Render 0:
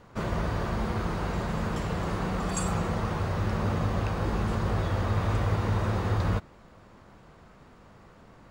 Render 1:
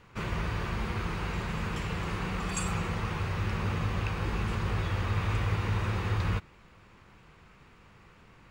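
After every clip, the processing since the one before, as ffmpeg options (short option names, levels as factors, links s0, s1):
-af "equalizer=f=250:t=o:w=0.67:g=-5,equalizer=f=630:t=o:w=0.67:g=-8,equalizer=f=2500:t=o:w=0.67:g=8,volume=0.794"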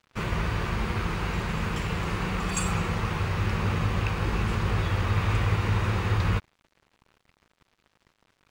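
-af "aeval=exprs='sgn(val(0))*max(abs(val(0))-0.00282,0)':c=same,volume=1.78"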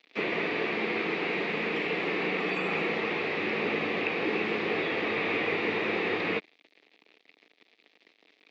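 -filter_complex "[0:a]aexciter=amount=2.4:drive=9.9:freq=2000,acrossover=split=2600[s0][s1];[s1]acompressor=threshold=0.0158:ratio=4:attack=1:release=60[s2];[s0][s2]amix=inputs=2:normalize=0,highpass=f=230:w=0.5412,highpass=f=230:w=1.3066,equalizer=f=300:t=q:w=4:g=7,equalizer=f=440:t=q:w=4:g=8,equalizer=f=690:t=q:w=4:g=4,equalizer=f=1000:t=q:w=4:g=-5,equalizer=f=1500:t=q:w=4:g=-5,equalizer=f=3000:t=q:w=4:g=-7,lowpass=f=3400:w=0.5412,lowpass=f=3400:w=1.3066"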